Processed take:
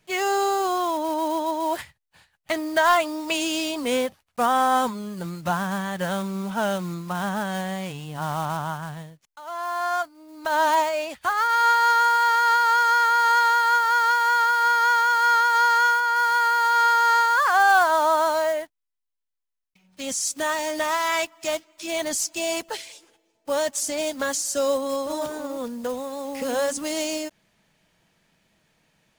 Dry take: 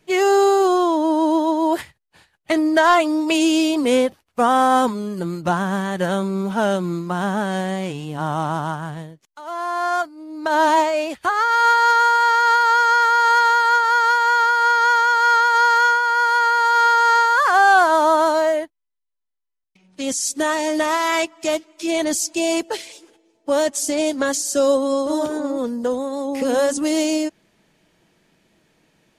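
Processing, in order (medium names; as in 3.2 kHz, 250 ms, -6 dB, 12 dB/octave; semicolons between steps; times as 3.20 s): block-companded coder 5-bit; peaking EQ 340 Hz -9 dB 1 oct; trim -3 dB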